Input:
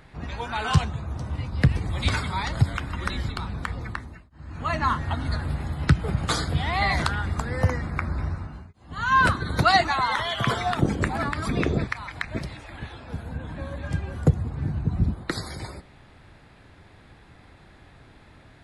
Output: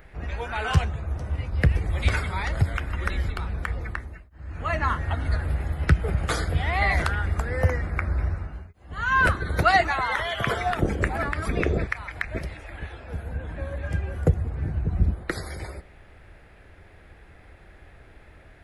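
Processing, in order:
octave-band graphic EQ 125/250/1,000/4,000/8,000 Hz −10/−10/−10/−12/−9 dB
level +7 dB

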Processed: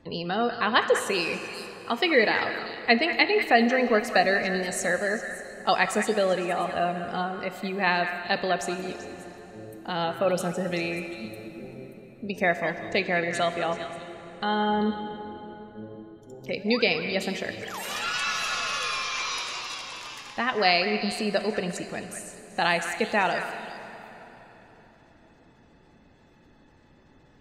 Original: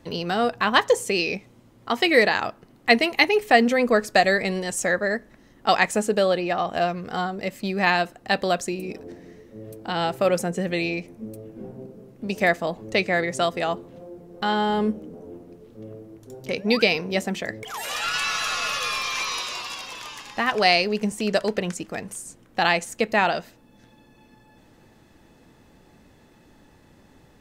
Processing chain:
gate on every frequency bin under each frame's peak −30 dB strong
echo through a band-pass that steps 194 ms, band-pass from 1,700 Hz, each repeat 1.4 octaves, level −6 dB
dense smooth reverb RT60 3.9 s, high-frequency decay 0.8×, DRR 9 dB
level −3.5 dB

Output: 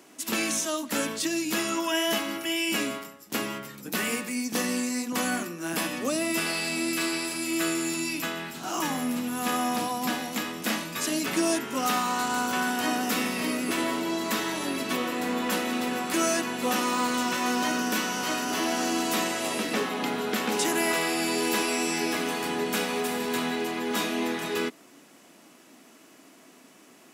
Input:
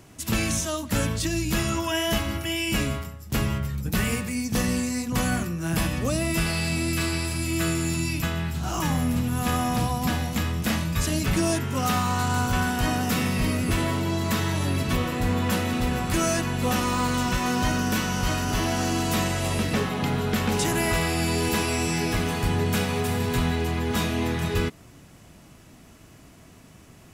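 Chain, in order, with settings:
Chebyshev high-pass filter 260 Hz, order 3

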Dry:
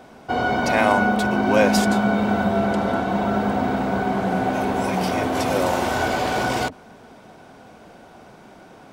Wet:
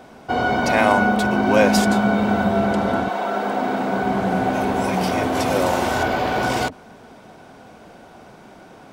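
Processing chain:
0:03.08–0:04.02: high-pass filter 540 Hz → 160 Hz 12 dB per octave
0:06.03–0:06.43: parametric band 8,500 Hz −10.5 dB 1.4 octaves
level +1.5 dB

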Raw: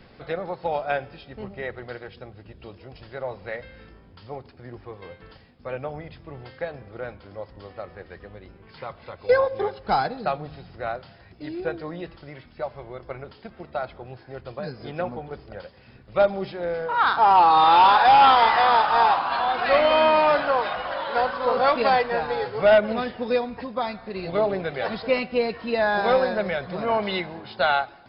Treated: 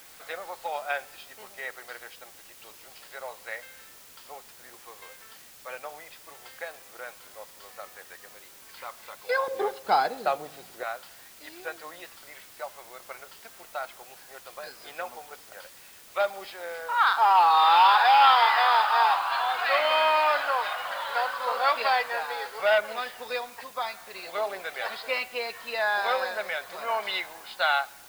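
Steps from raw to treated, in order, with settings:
high-pass filter 920 Hz 12 dB per octave, from 0:09.48 390 Hz, from 0:10.83 930 Hz
background noise white −51 dBFS

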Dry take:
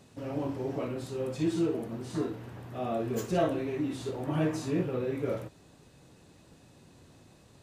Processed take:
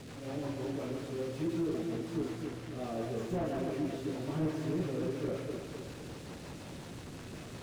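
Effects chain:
linear delta modulator 64 kbit/s, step −35.5 dBFS
rotating-speaker cabinet horn 5.5 Hz
echo with a time of its own for lows and highs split 570 Hz, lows 256 ms, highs 140 ms, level −5 dB
slew-rate limiting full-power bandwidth 18 Hz
level −3 dB

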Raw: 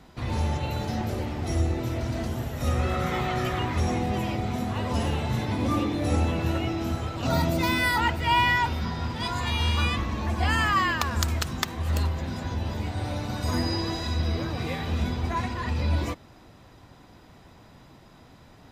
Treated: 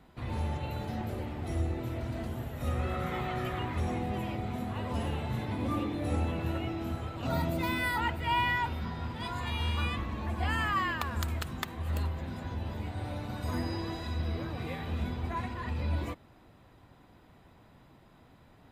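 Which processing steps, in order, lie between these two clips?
parametric band 5,700 Hz −10 dB 0.76 octaves
level −6.5 dB

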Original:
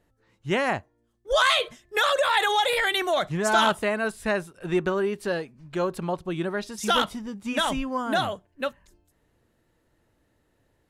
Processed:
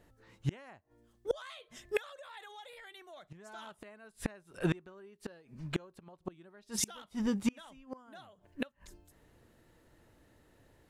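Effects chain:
gate with flip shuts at −22 dBFS, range −32 dB
level +4 dB

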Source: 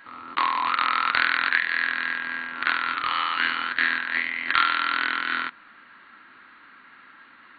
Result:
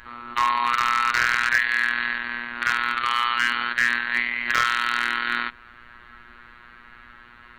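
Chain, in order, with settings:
phases set to zero 120 Hz
gain into a clipping stage and back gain 12.5 dB
background noise brown −60 dBFS
level +4.5 dB

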